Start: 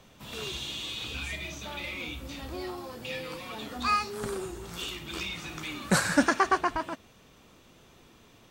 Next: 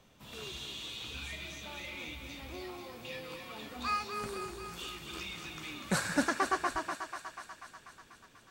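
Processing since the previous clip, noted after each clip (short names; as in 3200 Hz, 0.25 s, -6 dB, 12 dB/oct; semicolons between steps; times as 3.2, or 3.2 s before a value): thinning echo 0.244 s, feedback 71%, high-pass 500 Hz, level -7 dB; gain -7 dB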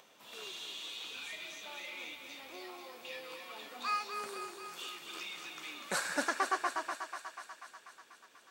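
HPF 430 Hz 12 dB/oct; upward compressor, threshold -55 dBFS; gain -1 dB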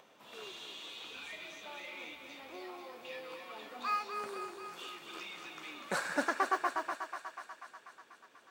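high shelf 2800 Hz -10 dB; modulation noise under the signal 33 dB; gain +2.5 dB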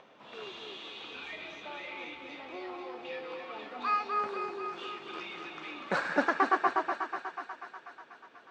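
air absorption 180 m; on a send: echo with dull and thin repeats by turns 0.246 s, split 1400 Hz, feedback 56%, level -7.5 dB; on the sum: gain +5.5 dB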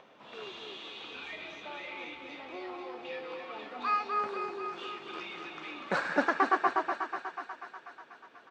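downsampling 32000 Hz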